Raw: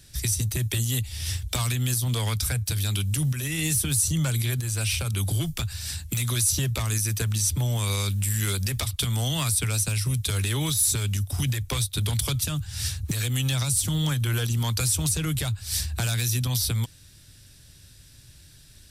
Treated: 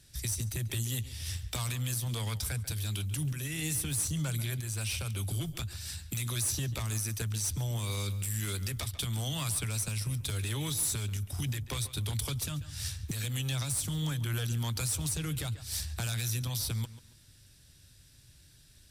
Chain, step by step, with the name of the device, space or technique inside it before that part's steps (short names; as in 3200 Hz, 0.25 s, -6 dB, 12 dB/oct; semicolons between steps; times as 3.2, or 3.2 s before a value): rockabilly slapback (tube stage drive 16 dB, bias 0.35; tape echo 0.139 s, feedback 31%, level -13 dB, low-pass 3300 Hz); gain -6.5 dB